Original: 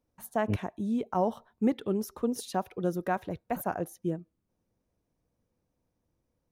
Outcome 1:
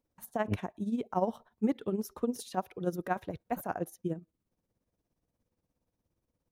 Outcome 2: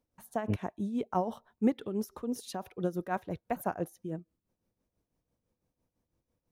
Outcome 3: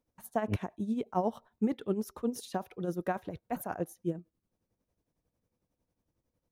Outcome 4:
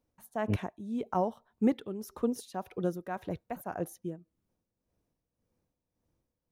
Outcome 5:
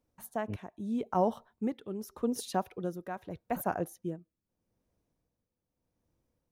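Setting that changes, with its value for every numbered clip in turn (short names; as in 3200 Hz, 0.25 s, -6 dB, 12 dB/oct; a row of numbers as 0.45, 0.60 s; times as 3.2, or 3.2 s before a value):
tremolo, rate: 17, 6, 11, 1.8, 0.81 Hz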